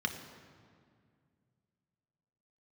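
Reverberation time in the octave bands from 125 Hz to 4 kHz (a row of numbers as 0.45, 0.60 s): 3.1, 2.8, 2.2, 2.0, 1.8, 1.4 s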